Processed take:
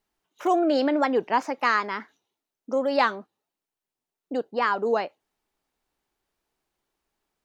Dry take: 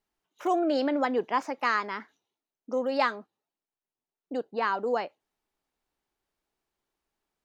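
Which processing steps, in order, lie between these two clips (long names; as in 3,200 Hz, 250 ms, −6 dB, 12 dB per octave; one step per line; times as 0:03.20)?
wow of a warped record 33 1/3 rpm, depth 100 cents
level +4 dB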